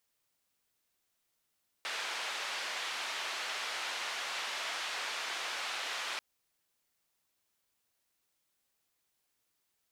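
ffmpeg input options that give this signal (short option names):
-f lavfi -i "anoisesrc=c=white:d=4.34:r=44100:seed=1,highpass=f=720,lowpass=f=3500,volume=-24.6dB"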